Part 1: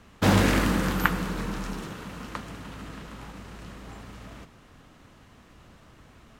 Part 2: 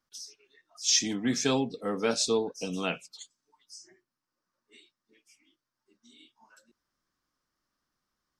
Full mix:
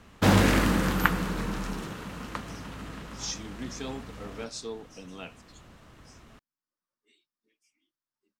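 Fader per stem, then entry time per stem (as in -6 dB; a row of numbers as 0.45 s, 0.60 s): 0.0 dB, -11.0 dB; 0.00 s, 2.35 s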